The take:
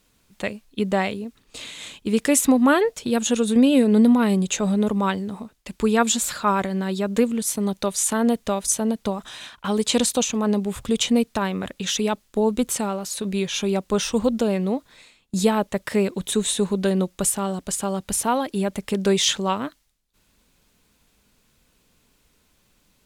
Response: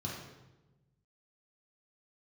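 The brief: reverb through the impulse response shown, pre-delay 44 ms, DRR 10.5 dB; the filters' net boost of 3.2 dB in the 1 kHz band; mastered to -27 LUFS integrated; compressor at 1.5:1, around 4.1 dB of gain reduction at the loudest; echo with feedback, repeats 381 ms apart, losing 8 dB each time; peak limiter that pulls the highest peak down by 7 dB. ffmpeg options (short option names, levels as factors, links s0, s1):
-filter_complex "[0:a]equalizer=f=1000:t=o:g=4,acompressor=threshold=0.0708:ratio=1.5,alimiter=limit=0.178:level=0:latency=1,aecho=1:1:381|762|1143|1524|1905:0.398|0.159|0.0637|0.0255|0.0102,asplit=2[s0][s1];[1:a]atrim=start_sample=2205,adelay=44[s2];[s1][s2]afir=irnorm=-1:irlink=0,volume=0.251[s3];[s0][s3]amix=inputs=2:normalize=0,volume=0.668"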